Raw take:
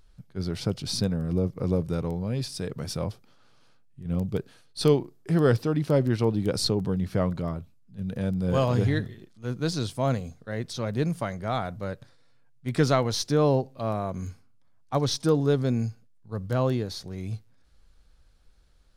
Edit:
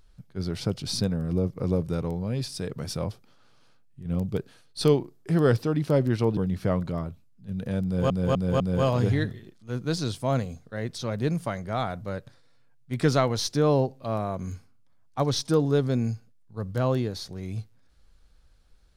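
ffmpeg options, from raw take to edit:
ffmpeg -i in.wav -filter_complex "[0:a]asplit=5[link_01][link_02][link_03][link_04][link_05];[link_01]atrim=end=6.372[link_06];[link_02]atrim=start=6.868:end=8.602[link_07];[link_03]atrim=start=8.348:end=8.602[link_08];[link_04]atrim=start=8.348:end=8.602[link_09];[link_05]atrim=start=8.348[link_10];[link_06][link_07]acrossfade=duration=0.004:curve1=hsin:curve2=hsin[link_11];[link_11][link_08]acrossfade=duration=0.004:curve1=hsin:curve2=hsin[link_12];[link_12][link_09]acrossfade=duration=0.004:curve1=hsin:curve2=hsin[link_13];[link_13][link_10]acrossfade=duration=0.004:curve1=hsin:curve2=hsin" out.wav

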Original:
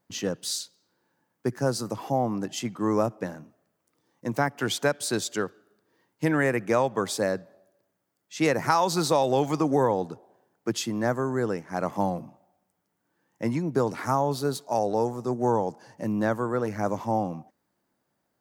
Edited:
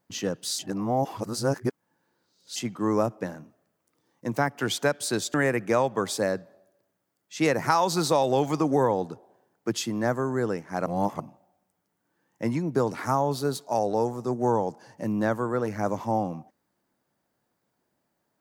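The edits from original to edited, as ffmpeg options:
ffmpeg -i in.wav -filter_complex "[0:a]asplit=6[link_01][link_02][link_03][link_04][link_05][link_06];[link_01]atrim=end=0.592[link_07];[link_02]atrim=start=0.588:end=2.562,asetpts=PTS-STARTPTS,areverse[link_08];[link_03]atrim=start=2.558:end=5.342[link_09];[link_04]atrim=start=6.338:end=11.862[link_10];[link_05]atrim=start=11.858:end=12.202,asetpts=PTS-STARTPTS,areverse[link_11];[link_06]atrim=start=12.198[link_12];[link_07][link_08]acrossfade=duration=0.004:curve1=hsin:curve2=hsin[link_13];[link_13][link_09]acrossfade=duration=0.004:curve1=hsin:curve2=hsin[link_14];[link_14][link_10]acrossfade=duration=0.004:curve1=hsin:curve2=hsin[link_15];[link_15][link_11]acrossfade=duration=0.004:curve1=hsin:curve2=hsin[link_16];[link_16][link_12]acrossfade=duration=0.004:curve1=hsin:curve2=hsin" out.wav

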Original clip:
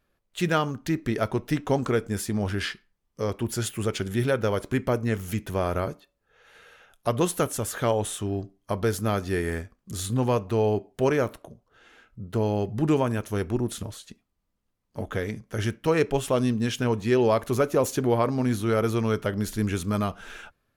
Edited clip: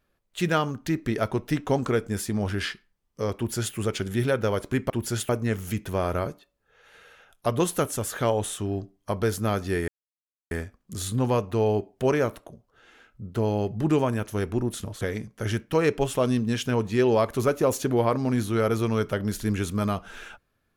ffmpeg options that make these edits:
ffmpeg -i in.wav -filter_complex "[0:a]asplit=5[link_01][link_02][link_03][link_04][link_05];[link_01]atrim=end=4.902[link_06];[link_02]atrim=start=3.358:end=3.752[link_07];[link_03]atrim=start=4.898:end=9.49,asetpts=PTS-STARTPTS,afade=type=out:start_time=4.588:duration=0.004:curve=hsin,apad=pad_dur=0.63[link_08];[link_04]atrim=start=9.49:end=13.992,asetpts=PTS-STARTPTS,afade=type=in:duration=0.004:curve=hsin[link_09];[link_05]atrim=start=15.138[link_10];[link_06][link_07]acrossfade=duration=0.004:curve1=hsin:curve2=hsin[link_11];[link_08][link_09]concat=n=2:v=0:a=1[link_12];[link_11][link_12]acrossfade=duration=0.004:curve1=hsin:curve2=hsin[link_13];[link_13][link_10]acrossfade=duration=0.004:curve1=hsin:curve2=hsin" out.wav

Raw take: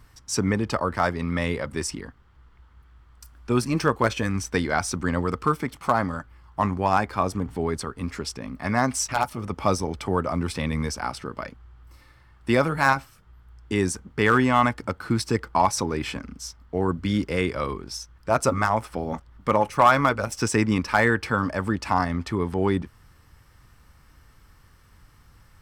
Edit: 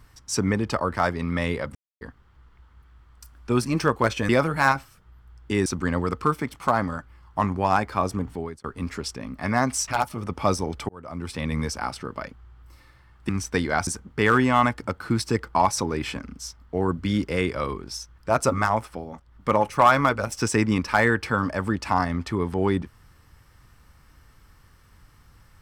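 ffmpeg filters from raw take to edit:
ffmpeg -i in.wav -filter_complex "[0:a]asplit=11[link_01][link_02][link_03][link_04][link_05][link_06][link_07][link_08][link_09][link_10][link_11];[link_01]atrim=end=1.75,asetpts=PTS-STARTPTS,afade=type=out:start_time=1.746:duration=0.004:curve=hsin[link_12];[link_02]atrim=start=1.75:end=2.01,asetpts=PTS-STARTPTS,volume=0[link_13];[link_03]atrim=start=2.01:end=4.292,asetpts=PTS-STARTPTS,afade=type=in:duration=0.004:curve=hsin[link_14];[link_04]atrim=start=12.498:end=13.872[link_15];[link_05]atrim=start=4.868:end=7.85,asetpts=PTS-STARTPTS,afade=type=out:start_time=2.582:duration=0.4[link_16];[link_06]atrim=start=7.85:end=10.1,asetpts=PTS-STARTPTS,afade=type=in:duration=0.004:curve=hsin,afade=type=out:start_time=2.246:duration=0.004:curve=hsin[link_17];[link_07]atrim=start=10.1:end=12.502,asetpts=PTS-STARTPTS,afade=type=in:duration=0.66[link_18];[link_08]atrim=start=4.288:end=4.872[link_19];[link_09]atrim=start=13.868:end=19.12,asetpts=PTS-STARTPTS,afade=type=out:start_time=4.882:duration=0.37:silence=0.316228[link_20];[link_10]atrim=start=19.12:end=19.13,asetpts=PTS-STARTPTS,volume=-10dB[link_21];[link_11]atrim=start=19.13,asetpts=PTS-STARTPTS,afade=type=in:duration=0.37:silence=0.316228[link_22];[link_12][link_13][link_14]concat=n=3:v=0:a=1[link_23];[link_23][link_15]acrossfade=duration=0.004:curve1=hsin:curve2=hsin[link_24];[link_16][link_17][link_18]concat=n=3:v=0:a=1[link_25];[link_24][link_25]acrossfade=duration=0.004:curve1=hsin:curve2=hsin[link_26];[link_26][link_19]acrossfade=duration=0.004:curve1=hsin:curve2=hsin[link_27];[link_20][link_21][link_22]concat=n=3:v=0:a=1[link_28];[link_27][link_28]acrossfade=duration=0.004:curve1=hsin:curve2=hsin" out.wav

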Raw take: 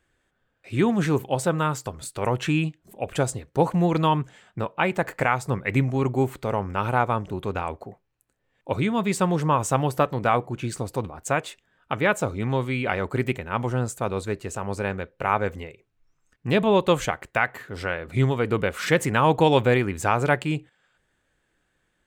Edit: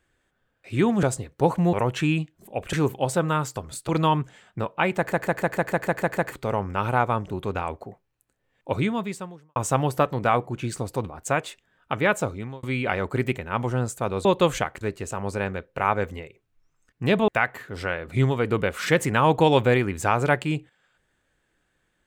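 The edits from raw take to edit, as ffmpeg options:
ffmpeg -i in.wav -filter_complex "[0:a]asplit=19[link_01][link_02][link_03][link_04][link_05][link_06][link_07][link_08][link_09][link_10][link_11][link_12][link_13][link_14][link_15][link_16][link_17][link_18][link_19];[link_01]atrim=end=1.032[link_20];[link_02]atrim=start=3.188:end=3.892[link_21];[link_03]atrim=start=2.188:end=3.192[link_22];[link_04]atrim=start=1.028:end=2.192[link_23];[link_05]atrim=start=3.888:end=5.122[link_24];[link_06]atrim=start=4.968:end=5.122[link_25];[link_07]atrim=start=4.968:end=5.122[link_26];[link_08]atrim=start=4.968:end=5.122[link_27];[link_09]atrim=start=4.968:end=5.122[link_28];[link_10]atrim=start=4.968:end=5.122[link_29];[link_11]atrim=start=4.968:end=5.122[link_30];[link_12]atrim=start=4.968:end=5.122[link_31];[link_13]atrim=start=4.968:end=5.122[link_32];[link_14]atrim=start=6.318:end=9.56,asetpts=PTS-STARTPTS,afade=type=out:start_time=2.532:duration=0.71:curve=qua[link_33];[link_15]atrim=start=9.56:end=12.63,asetpts=PTS-STARTPTS,afade=type=in:duration=0.004:curve=hsin,afade=type=out:start_time=2.65:duration=0.42[link_34];[link_16]atrim=start=12.63:end=14.252,asetpts=PTS-STARTPTS,afade=type=in:duration=0.004:curve=hsin[link_35];[link_17]atrim=start=16.718:end=17.282[link_36];[link_18]atrim=start=14.248:end=16.722[link_37];[link_19]atrim=start=17.278[link_38];[link_20][link_21]acrossfade=duration=0.004:curve1=hsin:curve2=hsin[link_39];[link_39][link_22]acrossfade=duration=0.004:curve1=hsin:curve2=hsin[link_40];[link_40][link_23]acrossfade=duration=0.004:curve1=hsin:curve2=hsin[link_41];[link_41][link_24]acrossfade=duration=0.004:curve1=hsin:curve2=hsin[link_42];[link_42][link_25]acrossfade=duration=0.004:curve1=hsin:curve2=hsin[link_43];[link_43][link_26]acrossfade=duration=0.004:curve1=hsin:curve2=hsin[link_44];[link_44][link_27]acrossfade=duration=0.004:curve1=hsin:curve2=hsin[link_45];[link_45][link_28]acrossfade=duration=0.004:curve1=hsin:curve2=hsin[link_46];[link_46][link_29]acrossfade=duration=0.004:curve1=hsin:curve2=hsin[link_47];[link_47][link_30]acrossfade=duration=0.004:curve1=hsin:curve2=hsin[link_48];[link_48][link_31]acrossfade=duration=0.004:curve1=hsin:curve2=hsin[link_49];[link_49][link_32]acrossfade=duration=0.004:curve1=hsin:curve2=hsin[link_50];[link_33][link_34][link_35]concat=n=3:v=0:a=1[link_51];[link_50][link_51]acrossfade=duration=0.004:curve1=hsin:curve2=hsin[link_52];[link_52][link_36]acrossfade=duration=0.004:curve1=hsin:curve2=hsin[link_53];[link_53][link_37]acrossfade=duration=0.004:curve1=hsin:curve2=hsin[link_54];[link_54][link_38]acrossfade=duration=0.004:curve1=hsin:curve2=hsin" out.wav

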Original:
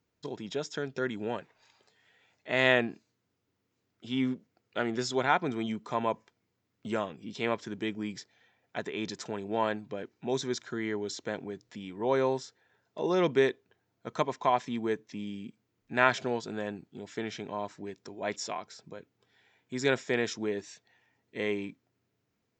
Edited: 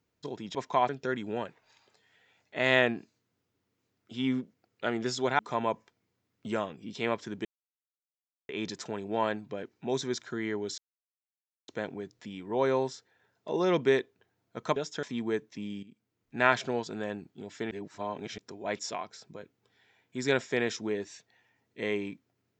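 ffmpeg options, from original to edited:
ffmpeg -i in.wav -filter_complex "[0:a]asplit=12[link_01][link_02][link_03][link_04][link_05][link_06][link_07][link_08][link_09][link_10][link_11][link_12];[link_01]atrim=end=0.552[link_13];[link_02]atrim=start=14.258:end=14.602[link_14];[link_03]atrim=start=0.818:end=5.322[link_15];[link_04]atrim=start=5.788:end=7.85,asetpts=PTS-STARTPTS,afade=type=out:start_time=2.058:duration=0.004:curve=hsin[link_16];[link_05]atrim=start=7.85:end=8.89,asetpts=PTS-STARTPTS,volume=0[link_17];[link_06]atrim=start=8.89:end=11.18,asetpts=PTS-STARTPTS,afade=type=in:duration=0.004:curve=hsin,afade=type=out:start_time=2.286:duration=0.004:curve=hsin,apad=pad_dur=0.9[link_18];[link_07]atrim=start=11.18:end=14.262,asetpts=PTS-STARTPTS,afade=type=in:duration=0.004:curve=hsin[link_19];[link_08]atrim=start=0.548:end=0.822[link_20];[link_09]atrim=start=14.598:end=15.4,asetpts=PTS-STARTPTS,afade=type=out:start_time=0.798:duration=0.004:curve=hsin:silence=0.199526[link_21];[link_10]atrim=start=15.4:end=17.282,asetpts=PTS-STARTPTS,afade=type=in:duration=0.57:silence=0.199526[link_22];[link_11]atrim=start=17.278:end=17.952,asetpts=PTS-STARTPTS,areverse[link_23];[link_12]atrim=start=17.948[link_24];[link_13][link_14]acrossfade=duration=0.004:curve1=hsin:curve2=hsin[link_25];[link_25][link_15]acrossfade=duration=0.004:curve1=hsin:curve2=hsin[link_26];[link_16][link_17][link_18][link_19]concat=n=4:v=0:a=1[link_27];[link_26][link_27]acrossfade=duration=0.004:curve1=hsin:curve2=hsin[link_28];[link_28][link_20]acrossfade=duration=0.004:curve1=hsin:curve2=hsin[link_29];[link_21][link_22]concat=n=2:v=0:a=1[link_30];[link_29][link_30]acrossfade=duration=0.004:curve1=hsin:curve2=hsin[link_31];[link_31][link_23]acrossfade=duration=0.004:curve1=hsin:curve2=hsin[link_32];[link_32][link_24]acrossfade=duration=0.004:curve1=hsin:curve2=hsin" out.wav

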